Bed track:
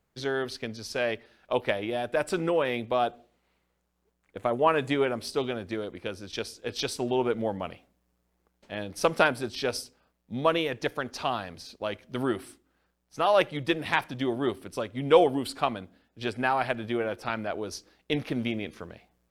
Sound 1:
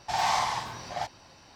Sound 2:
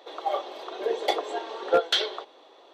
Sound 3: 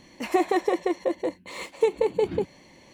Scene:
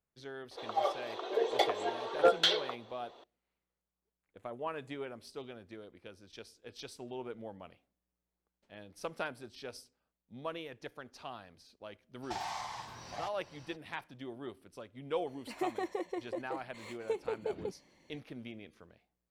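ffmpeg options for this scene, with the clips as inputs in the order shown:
ffmpeg -i bed.wav -i cue0.wav -i cue1.wav -i cue2.wav -filter_complex "[0:a]volume=-16dB[link_01];[1:a]acompressor=threshold=-34dB:ratio=4:attack=25:release=643:knee=1:detection=rms[link_02];[2:a]atrim=end=2.73,asetpts=PTS-STARTPTS,volume=-3.5dB,afade=type=in:duration=0.004:curve=hsin,afade=type=out:start_time=2.726:duration=0.004:curve=hsin,adelay=510[link_03];[link_02]atrim=end=1.55,asetpts=PTS-STARTPTS,volume=-4dB,afade=type=in:duration=0.02,afade=type=out:start_time=1.53:duration=0.02,adelay=12220[link_04];[3:a]atrim=end=2.93,asetpts=PTS-STARTPTS,volume=-13.5dB,afade=type=in:duration=0.004:curve=hsin,afade=type=out:start_time=2.926:duration=0.004:curve=hsin,adelay=15270[link_05];[link_01][link_03][link_04][link_05]amix=inputs=4:normalize=0" out.wav

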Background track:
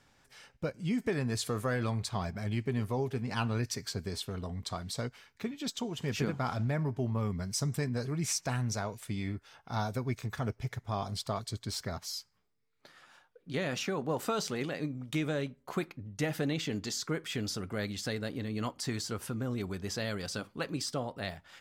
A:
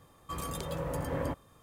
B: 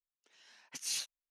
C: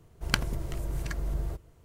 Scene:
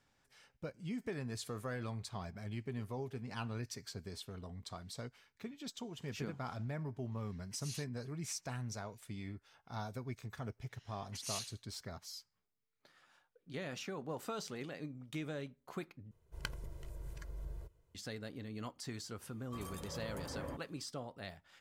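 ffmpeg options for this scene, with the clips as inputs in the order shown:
ffmpeg -i bed.wav -i cue0.wav -i cue1.wav -i cue2.wav -filter_complex "[2:a]asplit=2[link_01][link_02];[0:a]volume=-9.5dB[link_03];[link_02]aecho=1:1:85|170:0.282|0.0507[link_04];[3:a]aecho=1:1:2:0.49[link_05];[link_03]asplit=2[link_06][link_07];[link_06]atrim=end=16.114[link_08];[link_05]atrim=end=1.84,asetpts=PTS-STARTPTS,volume=-16.5dB[link_09];[link_07]atrim=start=17.946[link_10];[link_01]atrim=end=1.3,asetpts=PTS-STARTPTS,volume=-11.5dB,afade=type=in:duration=0.004:curve=hsin,afade=type=out:start_time=1.296:duration=0.004:curve=hsin,adelay=6790[link_11];[link_04]atrim=end=1.3,asetpts=PTS-STARTPTS,volume=-5.5dB,afade=type=in:duration=0.004:curve=hsin,afade=type=out:start_time=1.296:duration=0.004:curve=hsin,adelay=10400[link_12];[1:a]atrim=end=1.62,asetpts=PTS-STARTPTS,volume=-10.5dB,afade=type=in:duration=0.004:curve=hsin,afade=type=out:start_time=1.616:duration=0.004:curve=hsin,adelay=19230[link_13];[link_08][link_09]acrossfade=duration=0.004:curve1=hsin:curve2=hsin[link_14];[link_14][link_10]acrossfade=duration=0.004:curve1=hsin:curve2=hsin[link_15];[link_15][link_11][link_12][link_13]amix=inputs=4:normalize=0" out.wav

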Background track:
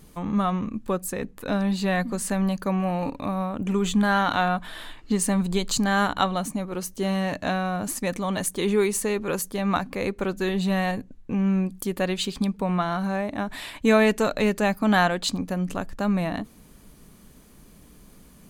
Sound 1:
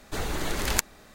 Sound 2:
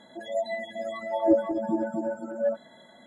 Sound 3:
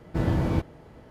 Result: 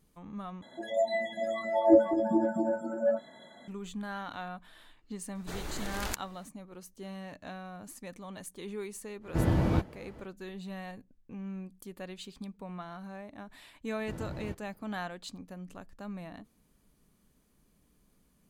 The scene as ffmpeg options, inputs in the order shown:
ffmpeg -i bed.wav -i cue0.wav -i cue1.wav -i cue2.wav -filter_complex "[3:a]asplit=2[link_01][link_02];[0:a]volume=-17.5dB[link_03];[2:a]asplit=2[link_04][link_05];[link_05]adelay=27,volume=-11dB[link_06];[link_04][link_06]amix=inputs=2:normalize=0[link_07];[1:a]alimiter=limit=-6dB:level=0:latency=1:release=71[link_08];[link_03]asplit=2[link_09][link_10];[link_09]atrim=end=0.624[link_11];[link_07]atrim=end=3.06,asetpts=PTS-STARTPTS,volume=-0.5dB[link_12];[link_10]atrim=start=3.676[link_13];[link_08]atrim=end=1.14,asetpts=PTS-STARTPTS,volume=-9dB,afade=type=in:duration=0.004:curve=hsin,afade=type=out:start_time=1.136:duration=0.004:curve=hsin,adelay=5350[link_14];[link_01]atrim=end=1.1,asetpts=PTS-STARTPTS,volume=-2dB,afade=type=in:duration=0.1,afade=type=out:start_time=1:duration=0.1,adelay=9200[link_15];[link_02]atrim=end=1.1,asetpts=PTS-STARTPTS,volume=-16dB,afade=type=in:duration=0.004:curve=hsin,afade=type=out:start_time=1.096:duration=0.004:curve=hsin,adelay=13930[link_16];[link_11][link_12]acrossfade=duration=0.004:curve1=hsin:curve2=hsin[link_17];[link_17][link_13]acrossfade=duration=0.004:curve1=hsin:curve2=hsin[link_18];[link_18][link_14][link_15][link_16]amix=inputs=4:normalize=0" out.wav

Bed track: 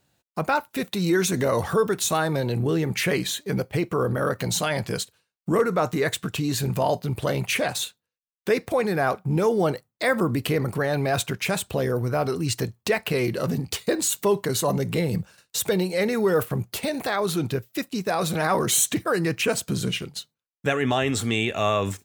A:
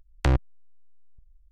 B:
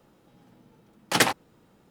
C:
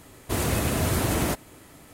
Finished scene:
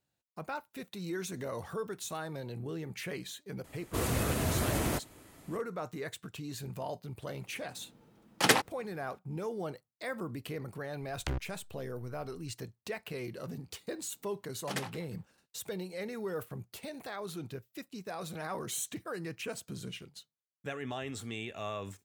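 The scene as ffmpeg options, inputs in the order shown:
ffmpeg -i bed.wav -i cue0.wav -i cue1.wav -i cue2.wav -filter_complex "[2:a]asplit=2[link_01][link_02];[0:a]volume=-16dB[link_03];[1:a]acompressor=threshold=-28dB:ratio=6:attack=3.2:release=140:knee=1:detection=peak[link_04];[link_02]asplit=2[link_05][link_06];[link_06]adelay=177,lowpass=frequency=3000:poles=1,volume=-17dB,asplit=2[link_07][link_08];[link_08]adelay=177,lowpass=frequency=3000:poles=1,volume=0.33,asplit=2[link_09][link_10];[link_10]adelay=177,lowpass=frequency=3000:poles=1,volume=0.33[link_11];[link_05][link_07][link_09][link_11]amix=inputs=4:normalize=0[link_12];[3:a]atrim=end=1.93,asetpts=PTS-STARTPTS,volume=-6.5dB,afade=type=in:duration=0.004:curve=hsin,afade=type=out:start_time=1.926:duration=0.004:curve=hsin,adelay=3640[link_13];[link_01]atrim=end=1.9,asetpts=PTS-STARTPTS,volume=-3.5dB,afade=type=in:duration=0.004:curve=hsin,afade=type=out:start_time=1.896:duration=0.004:curve=hsin,adelay=7290[link_14];[link_04]atrim=end=1.51,asetpts=PTS-STARTPTS,volume=-4.5dB,afade=type=in:duration=0.004:curve=hsin,afade=type=out:start_time=1.506:duration=0.004:curve=hsin,adelay=11020[link_15];[link_12]atrim=end=1.9,asetpts=PTS-STARTPTS,volume=-17dB,afade=type=in:duration=0.004:curve=hsin,afade=type=out:start_time=1.896:duration=0.004:curve=hsin,adelay=13560[link_16];[link_03][link_13][link_14][link_15][link_16]amix=inputs=5:normalize=0" out.wav

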